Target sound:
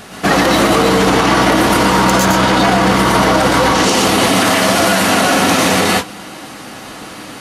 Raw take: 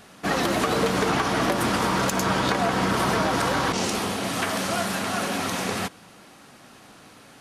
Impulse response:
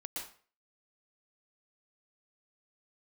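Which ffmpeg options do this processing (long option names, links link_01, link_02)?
-filter_complex "[1:a]atrim=start_sample=2205,afade=type=out:start_time=0.2:duration=0.01,atrim=end_sample=9261[link_01];[0:a][link_01]afir=irnorm=-1:irlink=0,alimiter=level_in=21.5dB:limit=-1dB:release=50:level=0:latency=1,volume=-2dB"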